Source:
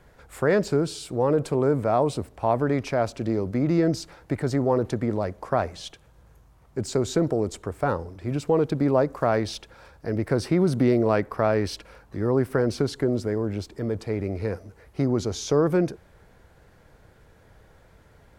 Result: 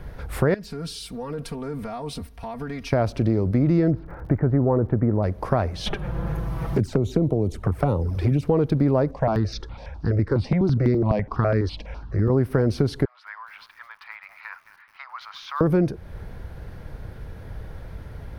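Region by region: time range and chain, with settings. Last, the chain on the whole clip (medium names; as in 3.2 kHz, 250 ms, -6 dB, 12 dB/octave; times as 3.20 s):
0.54–2.93 s: amplifier tone stack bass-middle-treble 5-5-5 + compression 5:1, threshold -41 dBFS + comb 4.3 ms, depth 90%
3.90–5.22 s: low-pass 1.7 kHz 24 dB/octave + crackle 59 per s -53 dBFS
5.86–8.43 s: dynamic bell 4.4 kHz, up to -4 dB, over -51 dBFS, Q 0.88 + touch-sensitive flanger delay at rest 6.7 ms, full sweep at -22 dBFS + three bands compressed up and down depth 70%
9.11–12.30 s: low-pass 6.4 kHz 24 dB/octave + stepped phaser 12 Hz 370–3000 Hz
13.05–15.61 s: steep high-pass 1 kHz 48 dB/octave + distance through air 390 m + bit-crushed delay 215 ms, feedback 55%, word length 9-bit, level -13 dB
whole clip: bass shelf 190 Hz +12 dB; compression 2.5:1, threshold -31 dBFS; peaking EQ 7.4 kHz -12 dB 0.36 oct; trim +9 dB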